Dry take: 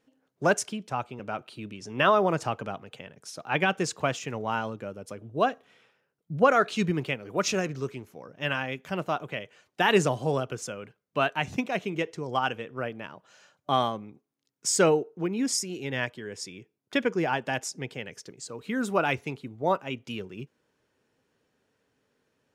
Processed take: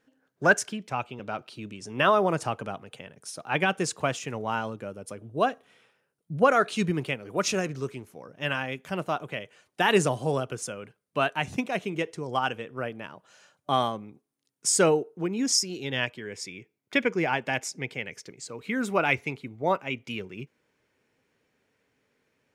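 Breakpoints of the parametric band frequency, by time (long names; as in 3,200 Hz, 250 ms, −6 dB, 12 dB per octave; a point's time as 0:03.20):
parametric band +9 dB 0.36 octaves
0:00.70 1,600 Hz
0:01.88 9,500 Hz
0:15.18 9,500 Hz
0:16.21 2,200 Hz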